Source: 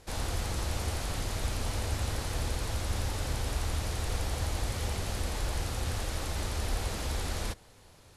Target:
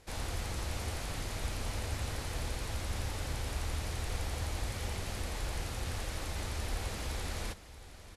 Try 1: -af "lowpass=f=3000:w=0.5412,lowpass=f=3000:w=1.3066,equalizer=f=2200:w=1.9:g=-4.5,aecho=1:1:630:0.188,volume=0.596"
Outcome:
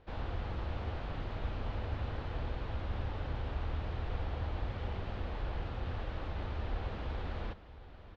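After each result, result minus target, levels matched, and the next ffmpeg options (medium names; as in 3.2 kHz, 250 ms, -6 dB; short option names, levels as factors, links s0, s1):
4 kHz band -8.0 dB; 2 kHz band -3.5 dB
-af "equalizer=f=2200:w=1.9:g=-4.5,aecho=1:1:630:0.188,volume=0.596"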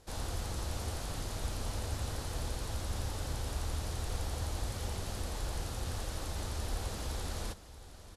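2 kHz band -4.0 dB
-af "equalizer=f=2200:w=1.9:g=3,aecho=1:1:630:0.188,volume=0.596"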